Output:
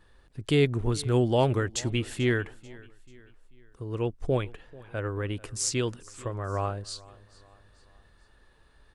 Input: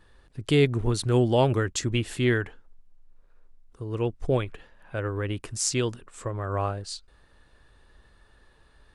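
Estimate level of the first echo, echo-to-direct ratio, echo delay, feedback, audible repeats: -22.0 dB, -21.0 dB, 0.439 s, 47%, 2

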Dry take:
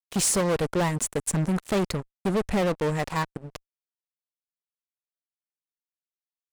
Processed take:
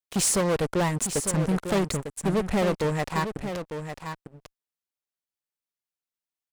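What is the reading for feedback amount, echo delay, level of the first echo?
no steady repeat, 0.9 s, -8.5 dB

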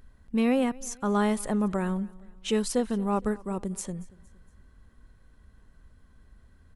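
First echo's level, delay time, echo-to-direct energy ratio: -23.0 dB, 0.232 s, -22.0 dB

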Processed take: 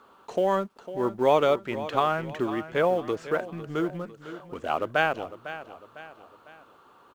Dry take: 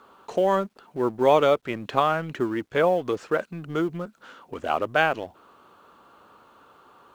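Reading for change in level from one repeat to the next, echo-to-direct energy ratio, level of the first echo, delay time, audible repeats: -7.0 dB, -12.5 dB, -13.5 dB, 0.502 s, 3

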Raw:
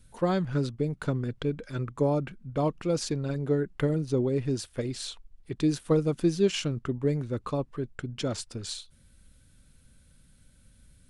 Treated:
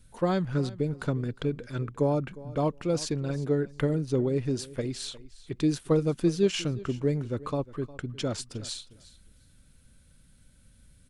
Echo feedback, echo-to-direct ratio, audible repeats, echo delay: 18%, -19.0 dB, 2, 0.357 s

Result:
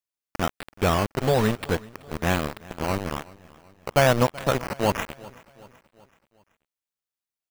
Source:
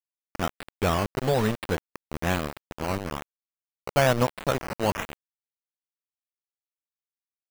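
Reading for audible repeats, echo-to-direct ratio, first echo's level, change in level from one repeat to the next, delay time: 3, -20.5 dB, -21.5 dB, -6.0 dB, 0.379 s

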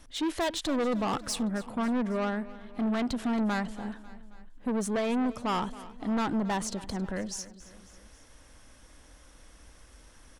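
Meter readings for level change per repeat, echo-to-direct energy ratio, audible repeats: -4.5 dB, -16.0 dB, 3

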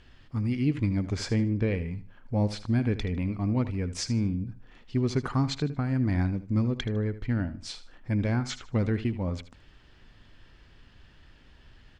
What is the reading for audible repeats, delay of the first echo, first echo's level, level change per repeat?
2, 77 ms, -14.0 dB, -12.0 dB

